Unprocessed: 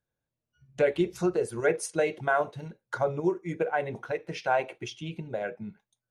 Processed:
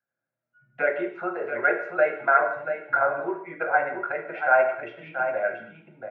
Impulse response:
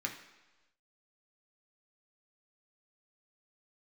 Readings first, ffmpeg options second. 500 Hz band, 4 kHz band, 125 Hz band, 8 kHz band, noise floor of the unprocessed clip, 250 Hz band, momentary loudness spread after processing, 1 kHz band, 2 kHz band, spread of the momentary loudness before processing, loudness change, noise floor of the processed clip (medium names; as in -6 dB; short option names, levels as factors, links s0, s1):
+2.5 dB, under -10 dB, -13.5 dB, under -35 dB, under -85 dBFS, -4.5 dB, 10 LU, +7.5 dB, +9.5 dB, 12 LU, +4.5 dB, under -85 dBFS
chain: -filter_complex "[0:a]aecho=1:1:684:0.398,acrossover=split=350[s0][s1];[s0]acompressor=threshold=0.00447:ratio=6[s2];[s2][s1]amix=inputs=2:normalize=0,highpass=230,equalizer=f=280:t=q:w=4:g=-5,equalizer=f=450:t=q:w=4:g=-4,equalizer=f=650:t=q:w=4:g=10,equalizer=f=1400:t=q:w=4:g=7,lowpass=f=2200:w=0.5412,lowpass=f=2200:w=1.3066[s3];[1:a]atrim=start_sample=2205,afade=t=out:st=0.29:d=0.01,atrim=end_sample=13230[s4];[s3][s4]afir=irnorm=-1:irlink=0,dynaudnorm=f=110:g=5:m=1.58,volume=0.794"